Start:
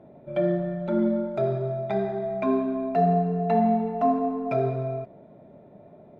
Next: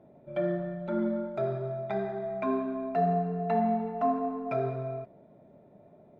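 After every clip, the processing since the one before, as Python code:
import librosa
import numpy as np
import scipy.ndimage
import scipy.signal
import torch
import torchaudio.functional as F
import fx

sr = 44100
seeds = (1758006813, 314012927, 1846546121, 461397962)

y = fx.dynamic_eq(x, sr, hz=1400.0, q=1.0, threshold_db=-41.0, ratio=4.0, max_db=6)
y = y * librosa.db_to_amplitude(-6.5)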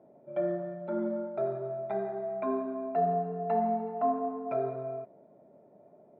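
y = fx.bandpass_q(x, sr, hz=570.0, q=0.67)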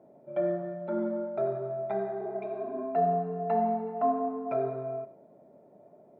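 y = fx.spec_repair(x, sr, seeds[0], start_s=2.23, length_s=0.57, low_hz=230.0, high_hz=2100.0, source='both')
y = y + 10.0 ** (-15.5 / 20.0) * np.pad(y, (int(98 * sr / 1000.0), 0))[:len(y)]
y = y * librosa.db_to_amplitude(1.5)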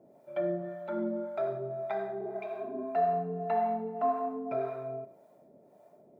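y = fx.high_shelf(x, sr, hz=2100.0, db=11.5)
y = fx.harmonic_tremolo(y, sr, hz=1.8, depth_pct=70, crossover_hz=580.0)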